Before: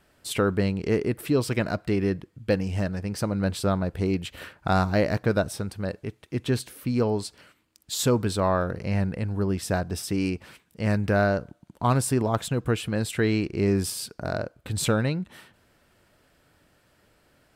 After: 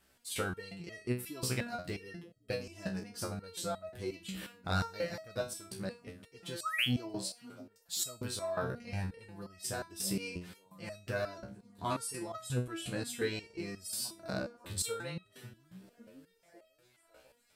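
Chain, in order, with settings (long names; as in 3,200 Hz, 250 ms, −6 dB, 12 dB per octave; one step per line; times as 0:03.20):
high-shelf EQ 2,800 Hz +10.5 dB
on a send: echo through a band-pass that steps 550 ms, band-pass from 160 Hz, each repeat 0.7 octaves, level −11 dB
0:06.63–0:06.85: on the sum: sound drawn into the spectrogram rise 1,100–3,500 Hz −17 dBFS
0:11.85–0:13.09: linear-phase brick-wall low-pass 13,000 Hz
step-sequenced resonator 5.6 Hz 64–640 Hz
level −2 dB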